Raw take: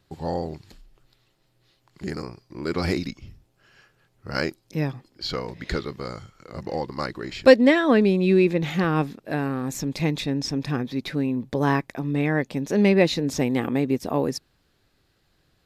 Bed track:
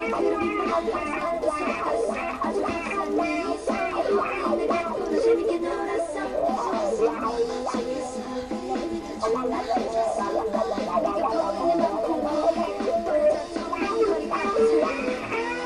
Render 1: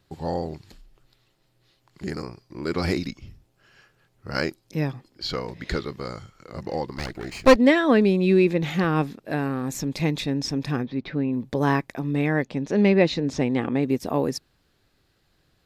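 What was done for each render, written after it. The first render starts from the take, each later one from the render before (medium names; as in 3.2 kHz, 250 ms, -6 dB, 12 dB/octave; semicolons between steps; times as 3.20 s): 6.96–7.56 s: comb filter that takes the minimum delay 0.42 ms; 10.85–11.33 s: distance through air 270 m; 12.45–13.83 s: distance through air 88 m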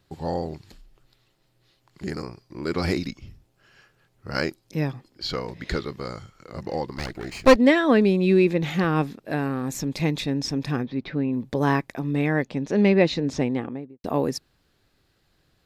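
13.33–14.04 s: studio fade out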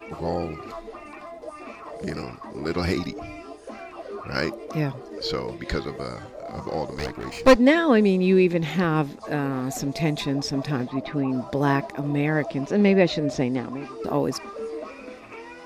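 add bed track -13 dB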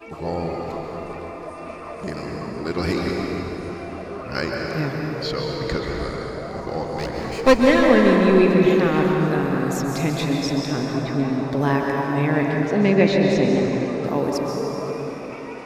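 plate-style reverb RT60 4.3 s, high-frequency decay 0.55×, pre-delay 115 ms, DRR -1 dB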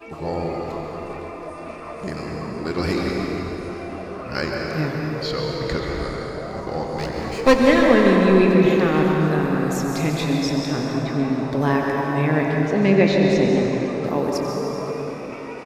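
doubling 26 ms -13.5 dB; delay 91 ms -12.5 dB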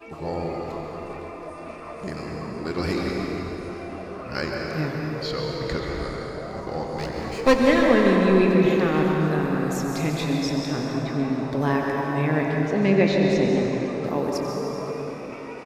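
trim -3 dB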